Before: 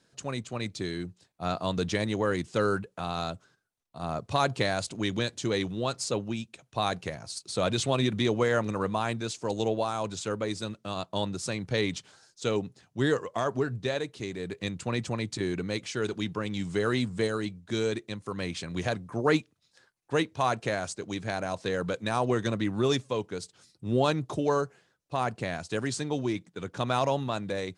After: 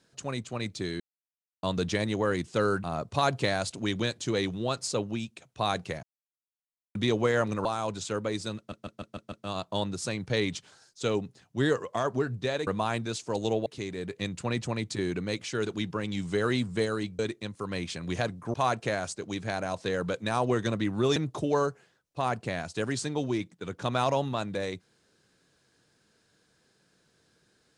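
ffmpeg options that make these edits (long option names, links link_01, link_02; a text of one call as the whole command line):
ffmpeg -i in.wav -filter_complex "[0:a]asplit=17[link_01][link_02][link_03][link_04][link_05][link_06][link_07][link_08][link_09][link_10][link_11][link_12][link_13][link_14][link_15][link_16][link_17];[link_01]atrim=end=1,asetpts=PTS-STARTPTS,afade=type=out:start_time=0.996:duration=0.004:curve=hsin[link_18];[link_02]atrim=start=1:end=1.63,asetpts=PTS-STARTPTS,volume=0[link_19];[link_03]atrim=start=1.63:end=2.842,asetpts=PTS-STARTPTS,afade=type=in:duration=0.004:curve=hsin[link_20];[link_04]atrim=start=4.008:end=7.2,asetpts=PTS-STARTPTS,afade=type=out:start_time=3.188:duration=0.004:curve=hsin[link_21];[link_05]atrim=start=7.2:end=8.12,asetpts=PTS-STARTPTS,volume=0[link_22];[link_06]atrim=start=8.12:end=8.822,asetpts=PTS-STARTPTS,afade=type=in:duration=0.004:curve=hsin[link_23];[link_07]atrim=start=9.808:end=10.882[link_24];[link_08]atrim=start=10.728:end=10.882[link_25];[link_09]atrim=start=10.728:end=10.882[link_26];[link_10]atrim=start=10.728:end=10.882[link_27];[link_11]atrim=start=10.728:end=10.882[link_28];[link_12]atrim=start=10.728:end=14.082[link_29];[link_13]atrim=start=8.818:end=9.812[link_30];[link_14]atrim=start=14.078:end=17.612[link_31];[link_15]atrim=start=17.858:end=19.212[link_32];[link_16]atrim=start=20.338:end=22.962[link_33];[link_17]atrim=start=24.108[link_34];[link_18][link_19][link_20]concat=n=3:v=0:a=1[link_35];[link_21][link_22][link_23]concat=n=3:v=0:a=1[link_36];[link_35][link_36]acrossfade=duration=0.004:curve1=hsin:curve2=hsin[link_37];[link_37][link_24]acrossfade=duration=0.004:curve1=hsin:curve2=hsin[link_38];[link_38][link_25]acrossfade=duration=0.004:curve1=hsin:curve2=hsin[link_39];[link_39][link_26]acrossfade=duration=0.004:curve1=hsin:curve2=hsin[link_40];[link_40][link_27]acrossfade=duration=0.004:curve1=hsin:curve2=hsin[link_41];[link_41][link_28]acrossfade=duration=0.004:curve1=hsin:curve2=hsin[link_42];[link_42][link_29]acrossfade=duration=0.004:curve1=hsin:curve2=hsin[link_43];[link_43][link_30]acrossfade=duration=0.004:curve1=hsin:curve2=hsin[link_44];[link_44][link_31]acrossfade=duration=0.004:curve1=hsin:curve2=hsin[link_45];[link_45][link_32]acrossfade=duration=0.004:curve1=hsin:curve2=hsin[link_46];[link_46][link_33]acrossfade=duration=0.004:curve1=hsin:curve2=hsin[link_47];[link_47][link_34]acrossfade=duration=0.004:curve1=hsin:curve2=hsin" out.wav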